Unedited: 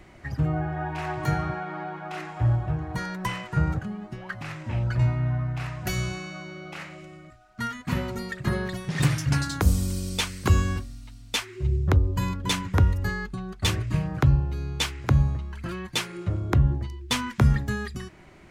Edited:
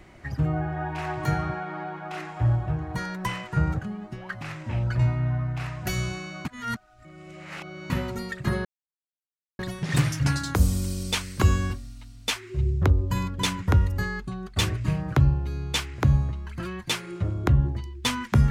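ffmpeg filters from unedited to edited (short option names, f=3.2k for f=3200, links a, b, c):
-filter_complex "[0:a]asplit=4[a][b][c][d];[a]atrim=end=6.452[e];[b]atrim=start=6.448:end=7.902,asetpts=PTS-STARTPTS,areverse[f];[c]atrim=start=7.898:end=8.65,asetpts=PTS-STARTPTS,afade=t=out:st=0.748:d=0.004:c=hsin,apad=pad_dur=0.94[g];[d]atrim=start=8.65,asetpts=PTS-STARTPTS,afade=t=in:d=0.004:c=hsin[h];[e][f]acrossfade=d=0.004:c1=hsin:c2=hsin[i];[g][h]concat=n=2:v=0:a=1[j];[i][j]acrossfade=d=0.004:c1=hsin:c2=hsin"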